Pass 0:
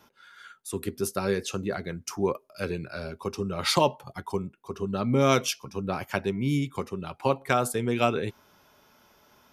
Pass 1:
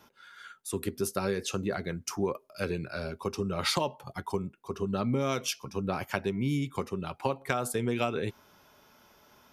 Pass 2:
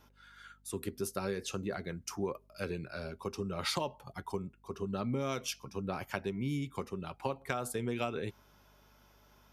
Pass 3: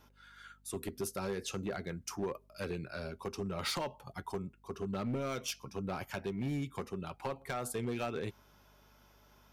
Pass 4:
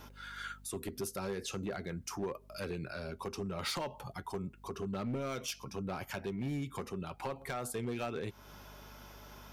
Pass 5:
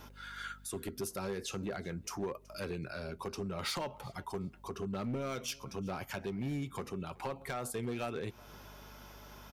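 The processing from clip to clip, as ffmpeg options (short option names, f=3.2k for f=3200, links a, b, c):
-af "acompressor=threshold=-25dB:ratio=6"
-af "aeval=exprs='val(0)+0.001*(sin(2*PI*50*n/s)+sin(2*PI*2*50*n/s)/2+sin(2*PI*3*50*n/s)/3+sin(2*PI*4*50*n/s)/4+sin(2*PI*5*50*n/s)/5)':c=same,volume=-5.5dB"
-af "volume=30.5dB,asoftclip=hard,volume=-30.5dB"
-af "alimiter=level_in=18.5dB:limit=-24dB:level=0:latency=1:release=235,volume=-18.5dB,volume=11dB"
-af "aecho=1:1:375|750:0.0631|0.012"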